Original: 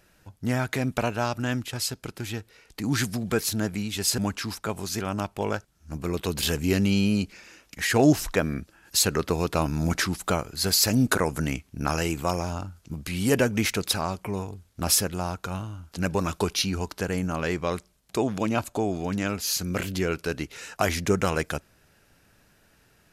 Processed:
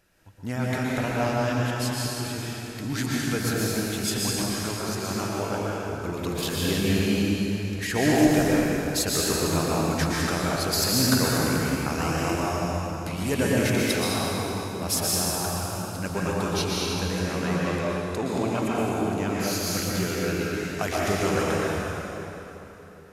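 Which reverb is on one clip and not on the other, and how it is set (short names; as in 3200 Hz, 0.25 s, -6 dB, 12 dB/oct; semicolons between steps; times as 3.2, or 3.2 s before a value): plate-style reverb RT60 3.6 s, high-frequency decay 0.75×, pre-delay 0.105 s, DRR -6 dB; gain -5.5 dB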